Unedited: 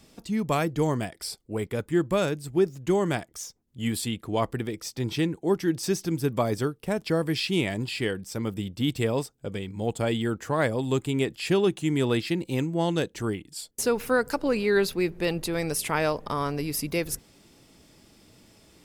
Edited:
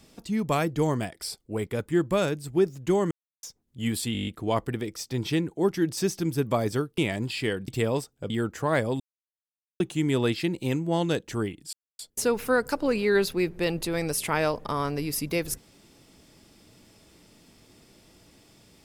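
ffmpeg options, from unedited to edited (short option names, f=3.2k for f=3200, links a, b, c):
-filter_complex "[0:a]asplit=16[a][b][c][d][e][f][g][h][i][j][k][l][m][n][o][p];[a]atrim=end=3.11,asetpts=PTS-STARTPTS,afade=t=out:st=3.106:d=0.004:c=hsin[q];[b]atrim=start=3.11:end=3.43,asetpts=PTS-STARTPTS,volume=0[r];[c]atrim=start=3.43:end=4.152,asetpts=PTS-STARTPTS,afade=t=in:d=0.004:c=hsin[s];[d]atrim=start=4.128:end=4.152[t];[e]atrim=start=4.128:end=4.152[u];[f]atrim=start=4.128:end=4.152[v];[g]atrim=start=4.128:end=4.152[w];[h]atrim=start=4.128:end=4.152[x];[i]atrim=start=4.128:end=4.152[y];[j]atrim=start=4.128:end=6.842[z];[k]atrim=start=7.558:end=8.262[aa];[l]atrim=start=8.898:end=9.522[ab];[m]atrim=start=10.168:end=10.87,asetpts=PTS-STARTPTS,afade=t=out:st=0.698:d=0.004:c=hsin[ac];[n]atrim=start=10.87:end=11.67,asetpts=PTS-STARTPTS,volume=0[ad];[o]atrim=start=11.67:end=13.6,asetpts=PTS-STARTPTS,afade=t=in:d=0.004:c=hsin,afade=t=out:st=1.926:d=0.004:c=hsin,apad=pad_dur=0.26[ae];[p]atrim=start=13.6,asetpts=PTS-STARTPTS,afade=t=in:d=0.004:c=hsin[af];[q][r][s]concat=n=3:v=0:a=1[ag];[ag][t]acrossfade=d=0.004:c1=hsin:c2=hsin[ah];[ah][u]acrossfade=d=0.004:c1=hsin:c2=hsin[ai];[ai][v]acrossfade=d=0.004:c1=hsin:c2=hsin[aj];[aj][w]acrossfade=d=0.004:c1=hsin:c2=hsin[ak];[ak][x]acrossfade=d=0.004:c1=hsin:c2=hsin[al];[al][y]acrossfade=d=0.004:c1=hsin:c2=hsin[am];[am][z]acrossfade=d=0.004:c1=hsin:c2=hsin[an];[an][aa]acrossfade=d=0.004:c1=hsin:c2=hsin[ao];[ao][ab]acrossfade=d=0.004:c1=hsin:c2=hsin[ap];[ac][ad][ae][af]concat=n=4:v=0:a=1[aq];[ap][aq]acrossfade=d=0.004:c1=hsin:c2=hsin"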